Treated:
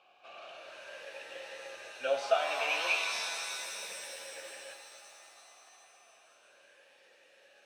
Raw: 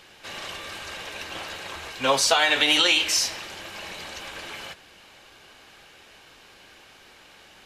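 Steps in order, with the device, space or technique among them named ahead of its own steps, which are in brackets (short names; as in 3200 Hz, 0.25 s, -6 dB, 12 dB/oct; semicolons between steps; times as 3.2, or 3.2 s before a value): 2.6–3.95 ripple EQ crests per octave 0.83, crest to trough 13 dB; talk box (tube stage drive 8 dB, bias 0.3; vowel sweep a-e 0.35 Hz); shimmer reverb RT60 2.8 s, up +7 st, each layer -2 dB, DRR 6 dB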